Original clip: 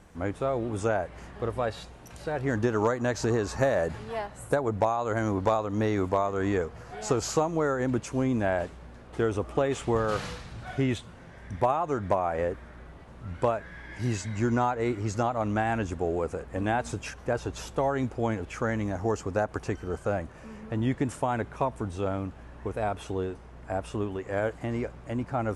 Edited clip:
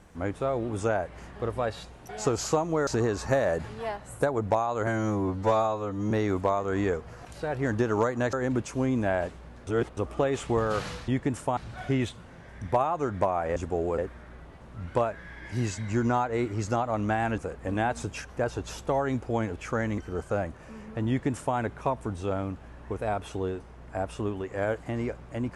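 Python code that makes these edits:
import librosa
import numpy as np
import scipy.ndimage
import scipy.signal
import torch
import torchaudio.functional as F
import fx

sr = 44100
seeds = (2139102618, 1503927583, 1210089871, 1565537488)

y = fx.edit(x, sr, fx.swap(start_s=2.09, length_s=1.08, other_s=6.93, other_length_s=0.78),
    fx.stretch_span(start_s=5.17, length_s=0.62, factor=2.0),
    fx.reverse_span(start_s=9.05, length_s=0.3),
    fx.move(start_s=15.85, length_s=0.42, to_s=12.45),
    fx.cut(start_s=18.87, length_s=0.86),
    fx.duplicate(start_s=20.83, length_s=0.49, to_s=10.46), tone=tone)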